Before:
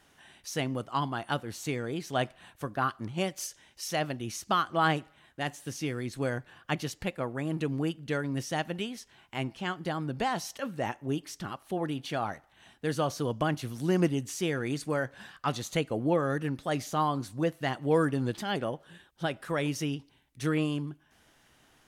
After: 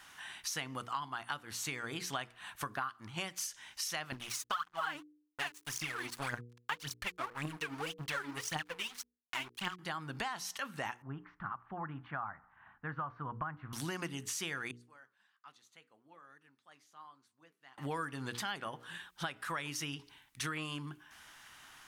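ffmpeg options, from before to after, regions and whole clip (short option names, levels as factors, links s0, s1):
-filter_complex "[0:a]asettb=1/sr,asplit=3[s0][s1][s2];[s0]atrim=end=4.124[s3];[s1]atrim=start=4.12:end=9.79,asetpts=PTS-STARTPTS,afade=t=in:d=0.004:c=qsin,afade=t=out:st=5.666:d=0.004:c=qsin,aphaser=in_gain=1:out_gain=1:delay=3.5:decay=0.8:speed=1.8:type=triangular,aeval=exprs='sgn(val(0))*max(abs(val(0))-0.00944,0)':c=same[s4];[s2]atrim=start=9.786[s5];[s3][s4]acrossfade=d=0.004:c1=hsin:c2=qsin[s6];[s6][s5]acrossfade=d=0.004:c1=qsin:c2=hsin,asettb=1/sr,asplit=3[s7][s8][s9];[s7]atrim=end=11.024[s10];[s8]atrim=start=11.02:end=13.73,asetpts=PTS-STARTPTS,afade=t=in:d=0.004:c=qsin,afade=t=out:st=2.706:d=0.004:c=qsin,lowpass=f=1400:w=0.5412,lowpass=f=1400:w=1.3066,equalizer=f=430:t=o:w=1.8:g=-12.5[s11];[s9]atrim=start=13.726[s12];[s10][s11]acrossfade=d=0.004:c1=hsin:c2=qsin[s13];[s13][s12]acrossfade=d=0.004:c1=qsin:c2=hsin,asettb=1/sr,asplit=3[s14][s15][s16];[s14]atrim=end=14.714[s17];[s15]atrim=start=14.71:end=17.78,asetpts=PTS-STARTPTS,afade=t=in:d=0.004:c=qsin,afade=t=out:st=3.066:d=0.004:c=qsin,bandpass=f=200:t=q:w=0.73,aderivative,flanger=delay=0:depth=7.8:regen=-84:speed=1.2:shape=triangular[s18];[s16]atrim=start=17.776[s19];[s17][s18]acrossfade=d=0.004:c1=hsin:c2=qsin[s20];[s20][s19]acrossfade=d=0.004:c1=qsin:c2=hsin,lowshelf=f=770:t=q:w=1.5:g=-10,bandreject=f=60:t=h:w=6,bandreject=f=120:t=h:w=6,bandreject=f=180:t=h:w=6,bandreject=f=240:t=h:w=6,bandreject=f=300:t=h:w=6,bandreject=f=360:t=h:w=6,bandreject=f=420:t=h:w=6,bandreject=f=480:t=h:w=6,acompressor=threshold=0.00631:ratio=6,volume=2.37"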